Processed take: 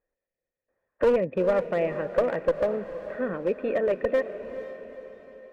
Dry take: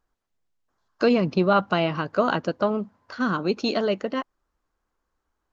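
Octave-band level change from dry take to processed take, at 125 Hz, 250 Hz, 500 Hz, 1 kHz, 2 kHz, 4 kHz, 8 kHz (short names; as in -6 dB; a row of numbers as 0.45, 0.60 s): -9.5 dB, -8.5 dB, +1.0 dB, -9.0 dB, -6.0 dB, under -15 dB, n/a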